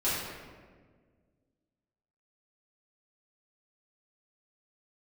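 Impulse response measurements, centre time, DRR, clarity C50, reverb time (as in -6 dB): 99 ms, -11.5 dB, -1.5 dB, 1.6 s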